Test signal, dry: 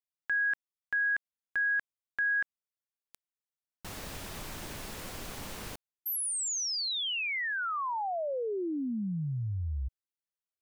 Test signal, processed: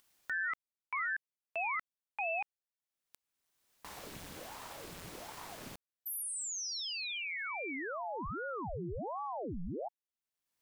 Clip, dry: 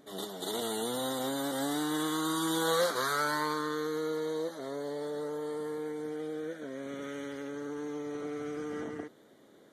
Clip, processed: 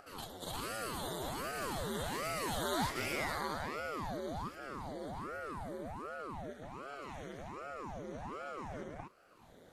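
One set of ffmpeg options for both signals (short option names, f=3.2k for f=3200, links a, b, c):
-af "acompressor=mode=upward:threshold=-42dB:ratio=2.5:attack=3.9:release=587:knee=2.83:detection=peak,aeval=exprs='val(0)*sin(2*PI*540*n/s+540*0.85/1.3*sin(2*PI*1.3*n/s))':c=same,volume=-3.5dB"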